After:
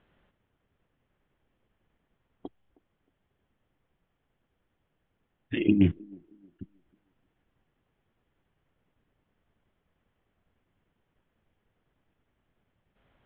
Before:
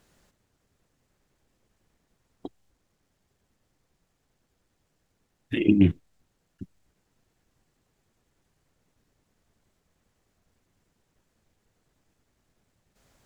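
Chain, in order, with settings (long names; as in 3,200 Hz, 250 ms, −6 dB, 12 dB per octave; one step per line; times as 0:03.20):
elliptic low-pass filter 3,300 Hz, stop band 40 dB
delay with a band-pass on its return 313 ms, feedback 31%, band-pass 410 Hz, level −24 dB
level −2 dB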